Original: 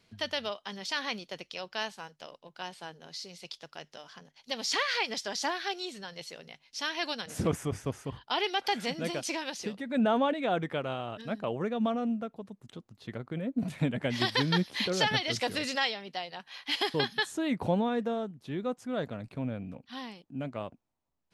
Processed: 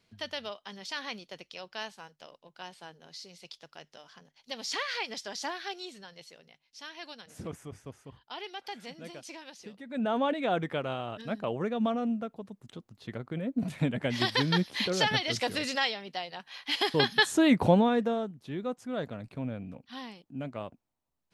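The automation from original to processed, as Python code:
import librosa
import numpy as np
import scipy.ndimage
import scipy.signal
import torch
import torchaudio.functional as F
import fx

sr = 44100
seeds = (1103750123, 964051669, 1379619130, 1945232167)

y = fx.gain(x, sr, db=fx.line((5.83, -4.0), (6.65, -11.0), (9.64, -11.0), (10.33, 0.5), (16.74, 0.5), (17.41, 9.0), (18.47, -1.0)))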